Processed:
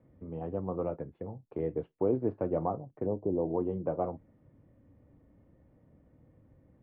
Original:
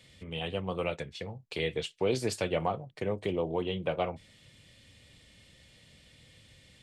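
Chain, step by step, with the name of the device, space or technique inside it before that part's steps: 3.06–3.49 steep low-pass 1000 Hz 48 dB/oct; under water (LPF 1100 Hz 24 dB/oct; bell 290 Hz +8.5 dB 0.52 oct); gain -1.5 dB

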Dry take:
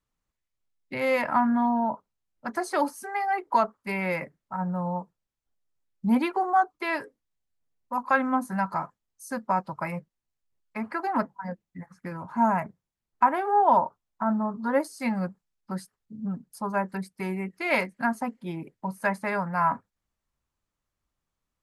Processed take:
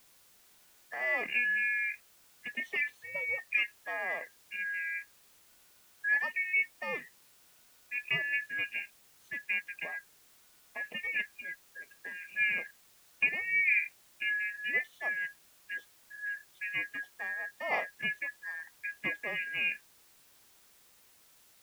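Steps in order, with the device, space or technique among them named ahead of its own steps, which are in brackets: split-band scrambled radio (four-band scrambler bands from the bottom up 2143; BPF 300–2900 Hz; white noise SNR 26 dB); gain -6.5 dB

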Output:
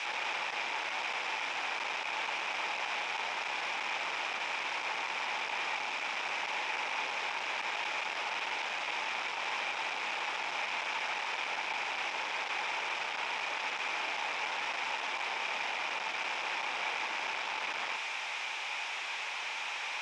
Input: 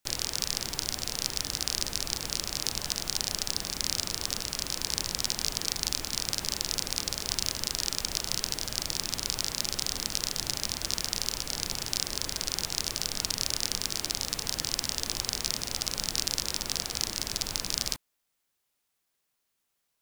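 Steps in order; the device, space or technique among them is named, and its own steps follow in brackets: home computer beeper (infinite clipping; speaker cabinet 710–4800 Hz, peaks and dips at 870 Hz +9 dB, 2400 Hz +10 dB, 4400 Hz -9 dB)

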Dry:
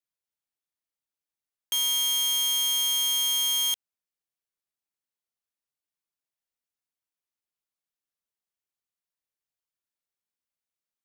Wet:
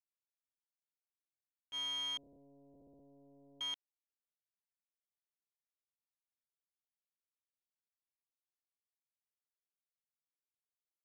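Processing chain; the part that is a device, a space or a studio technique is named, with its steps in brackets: hearing-loss simulation (LPF 2500 Hz 12 dB/oct; expander -20 dBFS); 2.17–3.61 steep low-pass 620 Hz 48 dB/oct; gain +14.5 dB

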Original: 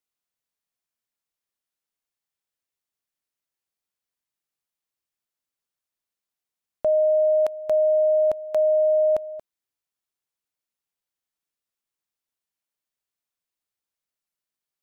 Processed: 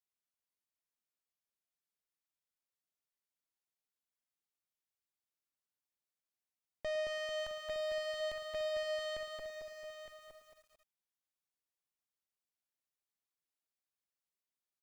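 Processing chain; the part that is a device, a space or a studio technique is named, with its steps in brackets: rockabilly slapback (tube stage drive 31 dB, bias 0.65; tape echo 0.108 s, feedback 27%, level -11 dB, low-pass 1100 Hz); 6.86–7.52 doubler 44 ms -14 dB; echo 0.913 s -10 dB; lo-fi delay 0.222 s, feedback 55%, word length 10-bit, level -4.5 dB; gain -5 dB

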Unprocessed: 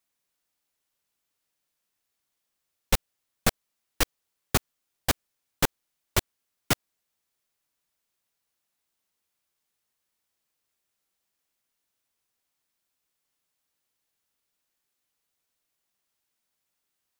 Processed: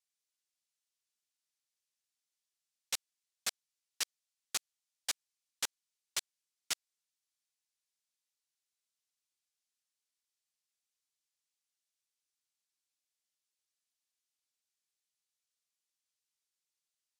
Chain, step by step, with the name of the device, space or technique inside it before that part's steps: piezo pickup straight into a mixer (LPF 6600 Hz 12 dB/oct; differentiator); gain -1 dB

